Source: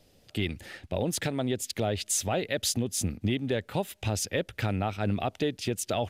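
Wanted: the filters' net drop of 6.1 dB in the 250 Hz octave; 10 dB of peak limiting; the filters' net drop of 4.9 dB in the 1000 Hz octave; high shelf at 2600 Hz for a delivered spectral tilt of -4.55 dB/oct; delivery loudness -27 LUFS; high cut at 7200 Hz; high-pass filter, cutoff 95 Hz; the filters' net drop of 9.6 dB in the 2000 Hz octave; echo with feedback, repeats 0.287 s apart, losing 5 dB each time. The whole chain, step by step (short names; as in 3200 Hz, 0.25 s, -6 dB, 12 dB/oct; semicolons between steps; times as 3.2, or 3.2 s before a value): HPF 95 Hz; LPF 7200 Hz; bell 250 Hz -7.5 dB; bell 1000 Hz -4.5 dB; bell 2000 Hz -7.5 dB; high shelf 2600 Hz -7 dB; limiter -30 dBFS; feedback echo 0.287 s, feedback 56%, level -5 dB; gain +12 dB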